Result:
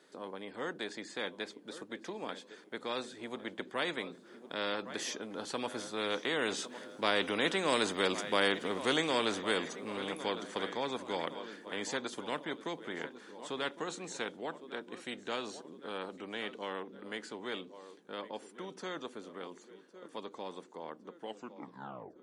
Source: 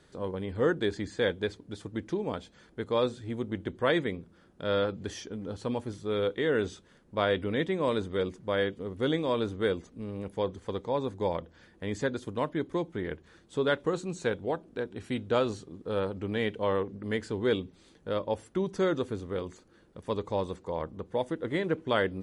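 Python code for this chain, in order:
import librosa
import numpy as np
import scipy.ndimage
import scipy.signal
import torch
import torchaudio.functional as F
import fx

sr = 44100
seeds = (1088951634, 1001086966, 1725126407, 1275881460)

p1 = fx.tape_stop_end(x, sr, length_s=1.14)
p2 = fx.doppler_pass(p1, sr, speed_mps=7, closest_m=5.8, pass_at_s=8.3)
p3 = scipy.signal.sosfilt(scipy.signal.butter(4, 240.0, 'highpass', fs=sr, output='sos'), p2)
p4 = p3 + fx.echo_feedback(p3, sr, ms=1108, feedback_pct=43, wet_db=-21.0, dry=0)
p5 = fx.spectral_comp(p4, sr, ratio=2.0)
y = p5 * librosa.db_to_amplitude(2.5)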